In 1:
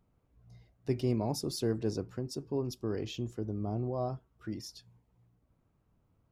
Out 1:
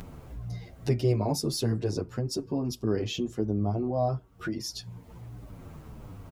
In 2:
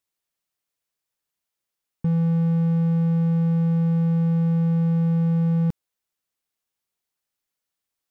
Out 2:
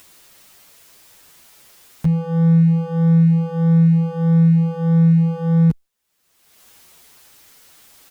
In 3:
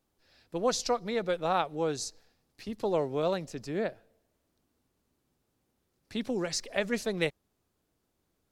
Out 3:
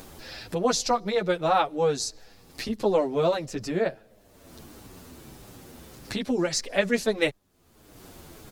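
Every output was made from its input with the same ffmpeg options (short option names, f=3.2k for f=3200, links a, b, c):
-filter_complex "[0:a]acompressor=mode=upward:threshold=-31dB:ratio=2.5,asplit=2[a][b];[b]adelay=8.3,afreqshift=-1.6[c];[a][c]amix=inputs=2:normalize=1,volume=8.5dB"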